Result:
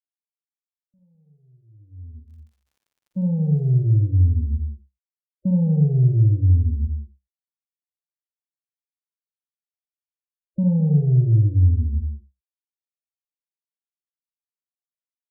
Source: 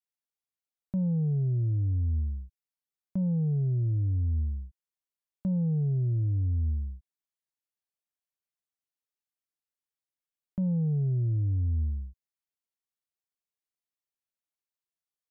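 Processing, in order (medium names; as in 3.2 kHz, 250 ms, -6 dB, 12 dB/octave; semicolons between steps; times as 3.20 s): fade-in on the opening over 4.46 s; gate -32 dBFS, range -29 dB; loudest bins only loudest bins 16; 2.24–3.80 s: crackle 29 per s -61 dBFS; multi-tap echo 46/55/87/211/252/274 ms -8/-7/-10/-9/-19/-17 dB; trim +8 dB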